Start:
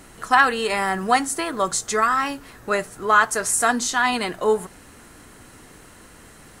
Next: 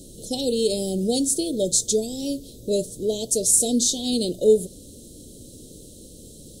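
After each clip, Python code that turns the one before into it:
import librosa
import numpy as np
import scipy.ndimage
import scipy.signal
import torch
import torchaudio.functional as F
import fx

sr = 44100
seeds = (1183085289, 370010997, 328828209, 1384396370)

y = scipy.signal.sosfilt(scipy.signal.cheby1(4, 1.0, [560.0, 3500.0], 'bandstop', fs=sr, output='sos'), x)
y = y * librosa.db_to_amplitude(4.5)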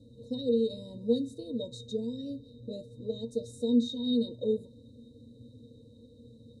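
y = fx.octave_resonator(x, sr, note='A#', decay_s=0.1)
y = fx.small_body(y, sr, hz=(940.0, 1800.0, 3900.0), ring_ms=35, db=12)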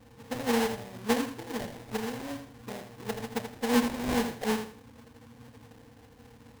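y = fx.spec_quant(x, sr, step_db=30)
y = fx.sample_hold(y, sr, seeds[0], rate_hz=1300.0, jitter_pct=20)
y = fx.echo_feedback(y, sr, ms=82, feedback_pct=27, wet_db=-8.5)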